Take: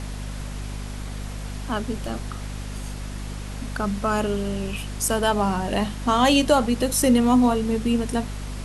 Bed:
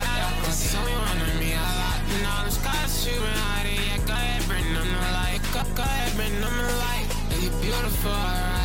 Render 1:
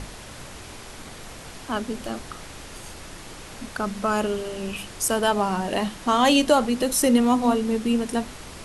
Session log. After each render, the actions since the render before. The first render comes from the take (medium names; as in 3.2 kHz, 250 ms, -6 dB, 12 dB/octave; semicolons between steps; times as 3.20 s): hum notches 50/100/150/200/250 Hz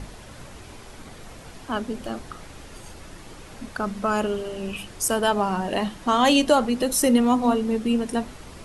noise reduction 6 dB, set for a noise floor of -41 dBFS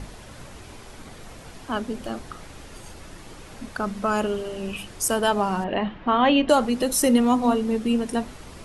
5.64–6.49 s: low-pass 3 kHz 24 dB/octave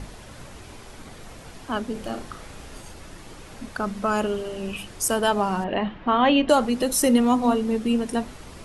1.92–2.82 s: flutter echo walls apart 5.8 m, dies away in 0.3 s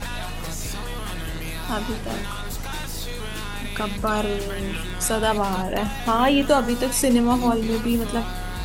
add bed -6 dB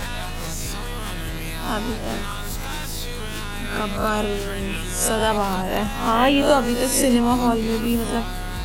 reverse spectral sustain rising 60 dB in 0.52 s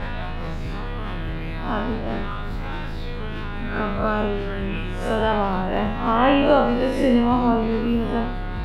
spectral sustain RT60 0.69 s; distance through air 400 m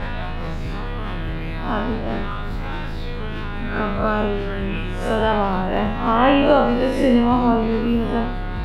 trim +2 dB; peak limiter -3 dBFS, peak gain reduction 1 dB